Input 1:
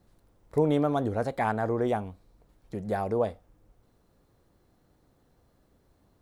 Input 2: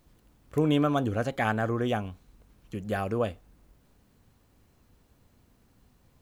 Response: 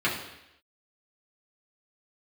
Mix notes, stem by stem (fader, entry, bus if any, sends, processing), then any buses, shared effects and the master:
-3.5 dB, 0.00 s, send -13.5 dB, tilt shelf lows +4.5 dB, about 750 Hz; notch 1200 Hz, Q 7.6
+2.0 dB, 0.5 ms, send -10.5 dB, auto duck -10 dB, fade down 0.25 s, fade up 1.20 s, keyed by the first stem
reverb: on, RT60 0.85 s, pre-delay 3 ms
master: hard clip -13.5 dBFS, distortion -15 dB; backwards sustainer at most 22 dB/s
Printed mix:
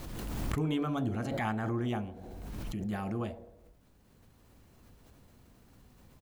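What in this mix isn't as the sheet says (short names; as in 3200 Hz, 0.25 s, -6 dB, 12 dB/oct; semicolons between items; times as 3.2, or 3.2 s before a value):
stem 1 -3.5 dB -> -13.5 dB; stem 2: send off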